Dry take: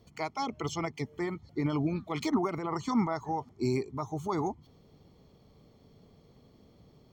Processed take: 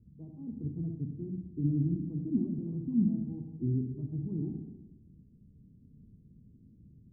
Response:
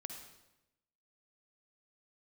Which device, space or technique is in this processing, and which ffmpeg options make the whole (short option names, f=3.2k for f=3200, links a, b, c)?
next room: -filter_complex "[0:a]lowpass=f=250:w=0.5412,lowpass=f=250:w=1.3066[a];[1:a]atrim=start_sample=2205[b];[a][b]afir=irnorm=-1:irlink=0,volume=6.5dB"